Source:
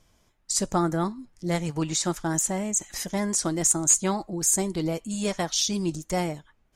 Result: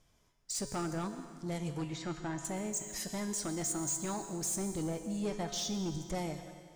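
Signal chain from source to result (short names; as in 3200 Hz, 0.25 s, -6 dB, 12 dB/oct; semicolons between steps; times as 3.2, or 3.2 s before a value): 1.84–2.45 LPF 2600 Hz 12 dB/oct; 4.57–6.15 tilt -1.5 dB/oct; in parallel at +1 dB: limiter -17.5 dBFS, peak gain reduction 9 dB; on the sum: soft clip -17.5 dBFS, distortion -12 dB; resonator 140 Hz, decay 1.2 s, harmonics odd, mix 80%; on a send at -10.5 dB: reverb RT60 2.0 s, pre-delay 0.108 s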